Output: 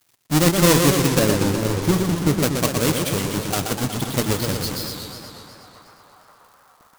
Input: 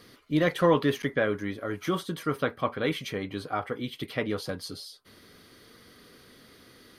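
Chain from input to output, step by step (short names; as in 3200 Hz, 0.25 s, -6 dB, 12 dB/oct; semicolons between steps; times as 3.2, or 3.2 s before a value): half-waves squared off; 1.19–2.39 tilt shelf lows +3.5 dB, about 650 Hz; in parallel at -0.5 dB: compressor, threshold -33 dBFS, peak gain reduction 17 dB; on the sum: tone controls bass +6 dB, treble +9 dB; crossover distortion -34 dBFS; on a send: narrowing echo 0.526 s, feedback 76%, band-pass 1100 Hz, level -14.5 dB; on the sum: warbling echo 0.122 s, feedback 72%, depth 197 cents, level -5 dB; gain -1 dB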